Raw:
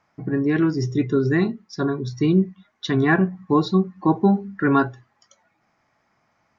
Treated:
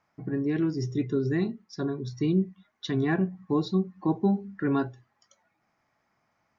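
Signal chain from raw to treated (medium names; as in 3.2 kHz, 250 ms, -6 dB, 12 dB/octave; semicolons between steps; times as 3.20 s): dynamic bell 1.3 kHz, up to -8 dB, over -37 dBFS, Q 1.1; trim -6.5 dB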